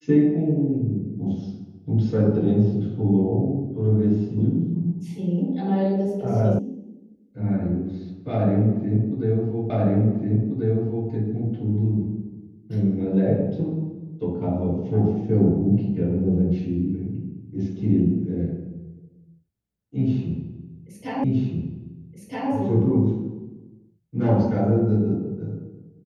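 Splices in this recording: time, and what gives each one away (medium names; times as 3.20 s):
6.59 s: sound stops dead
9.70 s: repeat of the last 1.39 s
21.24 s: repeat of the last 1.27 s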